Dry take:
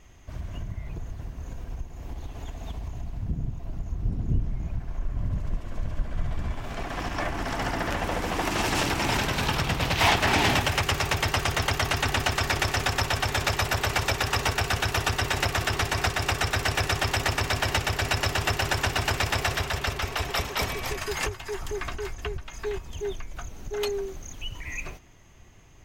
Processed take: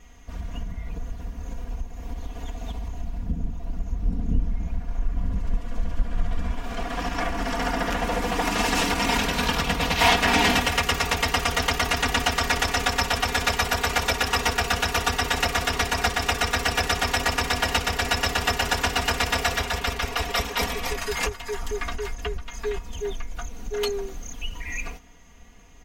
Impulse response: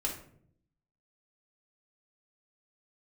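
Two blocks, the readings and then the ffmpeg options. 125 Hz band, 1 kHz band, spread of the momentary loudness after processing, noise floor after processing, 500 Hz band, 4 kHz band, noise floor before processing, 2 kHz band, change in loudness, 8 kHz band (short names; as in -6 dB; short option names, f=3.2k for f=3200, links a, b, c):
-2.0 dB, +3.0 dB, 14 LU, -40 dBFS, +2.0 dB, +3.0 dB, -43 dBFS, +2.5 dB, +2.5 dB, +3.0 dB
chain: -af "aecho=1:1:4.2:0.95"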